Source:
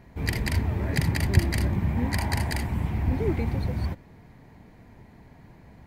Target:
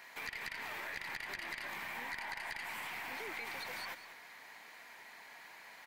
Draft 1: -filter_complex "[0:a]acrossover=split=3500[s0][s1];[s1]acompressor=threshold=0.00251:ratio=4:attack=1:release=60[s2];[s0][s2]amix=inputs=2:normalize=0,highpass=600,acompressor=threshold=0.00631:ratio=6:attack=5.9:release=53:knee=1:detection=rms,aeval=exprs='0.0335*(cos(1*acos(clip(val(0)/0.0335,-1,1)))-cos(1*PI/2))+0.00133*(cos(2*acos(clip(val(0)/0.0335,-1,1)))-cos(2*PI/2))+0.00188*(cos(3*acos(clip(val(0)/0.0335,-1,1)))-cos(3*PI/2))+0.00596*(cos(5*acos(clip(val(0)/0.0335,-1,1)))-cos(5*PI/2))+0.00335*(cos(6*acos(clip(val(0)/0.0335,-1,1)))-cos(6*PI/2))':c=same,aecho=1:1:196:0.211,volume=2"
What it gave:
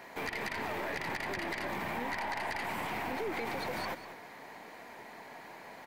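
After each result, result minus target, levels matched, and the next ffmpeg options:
500 Hz band +7.0 dB; compression: peak gain reduction -5 dB
-filter_complex "[0:a]acrossover=split=3500[s0][s1];[s1]acompressor=threshold=0.00251:ratio=4:attack=1:release=60[s2];[s0][s2]amix=inputs=2:normalize=0,highpass=1500,acompressor=threshold=0.00631:ratio=6:attack=5.9:release=53:knee=1:detection=rms,aeval=exprs='0.0335*(cos(1*acos(clip(val(0)/0.0335,-1,1)))-cos(1*PI/2))+0.00133*(cos(2*acos(clip(val(0)/0.0335,-1,1)))-cos(2*PI/2))+0.00188*(cos(3*acos(clip(val(0)/0.0335,-1,1)))-cos(3*PI/2))+0.00596*(cos(5*acos(clip(val(0)/0.0335,-1,1)))-cos(5*PI/2))+0.00335*(cos(6*acos(clip(val(0)/0.0335,-1,1)))-cos(6*PI/2))':c=same,aecho=1:1:196:0.211,volume=2"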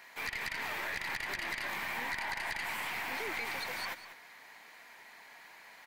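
compression: peak gain reduction -6.5 dB
-filter_complex "[0:a]acrossover=split=3500[s0][s1];[s1]acompressor=threshold=0.00251:ratio=4:attack=1:release=60[s2];[s0][s2]amix=inputs=2:normalize=0,highpass=1500,acompressor=threshold=0.00266:ratio=6:attack=5.9:release=53:knee=1:detection=rms,aeval=exprs='0.0335*(cos(1*acos(clip(val(0)/0.0335,-1,1)))-cos(1*PI/2))+0.00133*(cos(2*acos(clip(val(0)/0.0335,-1,1)))-cos(2*PI/2))+0.00188*(cos(3*acos(clip(val(0)/0.0335,-1,1)))-cos(3*PI/2))+0.00596*(cos(5*acos(clip(val(0)/0.0335,-1,1)))-cos(5*PI/2))+0.00335*(cos(6*acos(clip(val(0)/0.0335,-1,1)))-cos(6*PI/2))':c=same,aecho=1:1:196:0.211,volume=2"

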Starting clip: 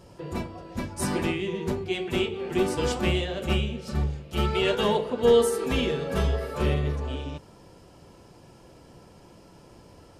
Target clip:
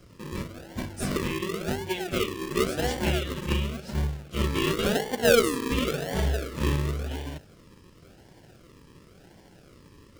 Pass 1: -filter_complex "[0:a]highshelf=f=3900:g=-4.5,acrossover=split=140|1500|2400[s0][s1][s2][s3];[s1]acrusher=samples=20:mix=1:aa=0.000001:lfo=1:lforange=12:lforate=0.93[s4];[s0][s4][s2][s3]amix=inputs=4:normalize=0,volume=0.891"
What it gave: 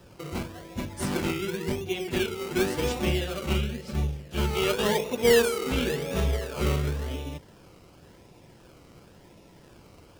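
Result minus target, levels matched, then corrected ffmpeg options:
decimation with a swept rate: distortion -15 dB
-filter_complex "[0:a]highshelf=f=3900:g=-4.5,acrossover=split=140|1500|2400[s0][s1][s2][s3];[s1]acrusher=samples=48:mix=1:aa=0.000001:lfo=1:lforange=28.8:lforate=0.93[s4];[s0][s4][s2][s3]amix=inputs=4:normalize=0,volume=0.891"

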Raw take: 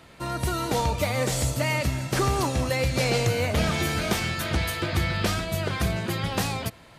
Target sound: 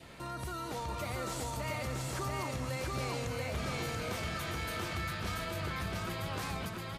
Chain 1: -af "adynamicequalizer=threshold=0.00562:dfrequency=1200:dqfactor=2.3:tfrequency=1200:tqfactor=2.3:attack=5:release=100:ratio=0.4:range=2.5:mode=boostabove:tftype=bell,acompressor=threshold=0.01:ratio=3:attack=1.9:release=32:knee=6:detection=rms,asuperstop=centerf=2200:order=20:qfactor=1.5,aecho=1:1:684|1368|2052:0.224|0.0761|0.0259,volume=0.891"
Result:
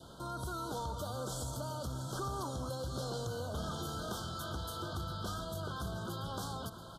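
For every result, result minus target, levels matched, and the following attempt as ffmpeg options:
2 kHz band -7.5 dB; echo-to-direct -11 dB
-af "adynamicequalizer=threshold=0.00562:dfrequency=1200:dqfactor=2.3:tfrequency=1200:tqfactor=2.3:attack=5:release=100:ratio=0.4:range=2.5:mode=boostabove:tftype=bell,acompressor=threshold=0.01:ratio=3:attack=1.9:release=32:knee=6:detection=rms,aecho=1:1:684|1368|2052:0.224|0.0761|0.0259,volume=0.891"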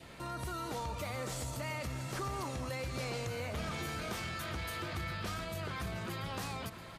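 echo-to-direct -11 dB
-af "adynamicequalizer=threshold=0.00562:dfrequency=1200:dqfactor=2.3:tfrequency=1200:tqfactor=2.3:attack=5:release=100:ratio=0.4:range=2.5:mode=boostabove:tftype=bell,acompressor=threshold=0.01:ratio=3:attack=1.9:release=32:knee=6:detection=rms,aecho=1:1:684|1368|2052|2736|3420:0.794|0.27|0.0918|0.0312|0.0106,volume=0.891"

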